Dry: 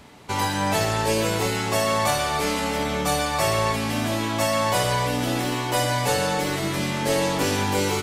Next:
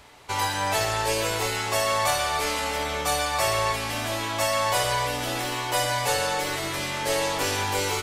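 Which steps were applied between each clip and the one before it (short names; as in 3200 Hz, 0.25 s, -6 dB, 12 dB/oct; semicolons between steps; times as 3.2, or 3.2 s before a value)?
bell 200 Hz -14.5 dB 1.5 oct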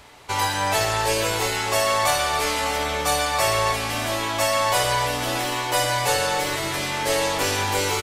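echo 0.607 s -16 dB; gain +3 dB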